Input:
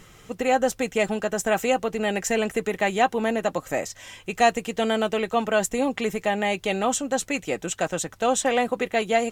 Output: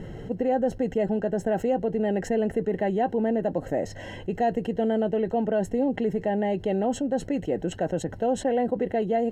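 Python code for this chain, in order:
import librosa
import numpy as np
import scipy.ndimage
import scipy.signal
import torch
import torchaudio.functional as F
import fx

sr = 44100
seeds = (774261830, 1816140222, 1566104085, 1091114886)

y = scipy.signal.lfilter(np.full(37, 1.0 / 37), 1.0, x)
y = fx.low_shelf(y, sr, hz=94.0, db=-5.5)
y = fx.env_flatten(y, sr, amount_pct=50)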